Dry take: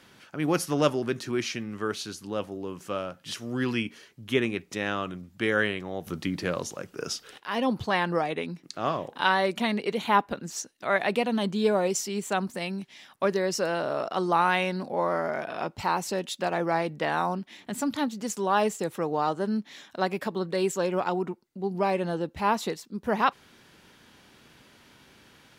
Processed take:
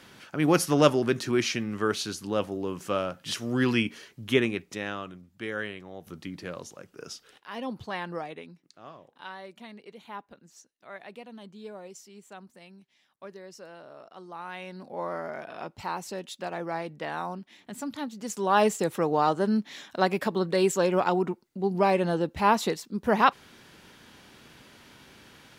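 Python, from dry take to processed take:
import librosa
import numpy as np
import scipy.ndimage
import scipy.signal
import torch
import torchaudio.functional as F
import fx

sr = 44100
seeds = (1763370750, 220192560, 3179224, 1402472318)

y = fx.gain(x, sr, db=fx.line((4.24, 3.5), (5.22, -8.5), (8.23, -8.5), (8.85, -18.5), (14.34, -18.5), (15.02, -6.5), (18.08, -6.5), (18.62, 3.0)))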